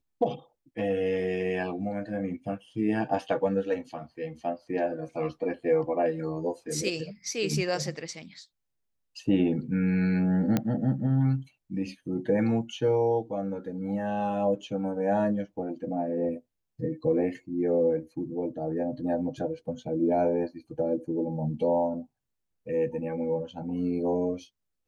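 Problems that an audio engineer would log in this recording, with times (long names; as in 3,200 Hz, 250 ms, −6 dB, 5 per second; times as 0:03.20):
0:10.57: click −12 dBFS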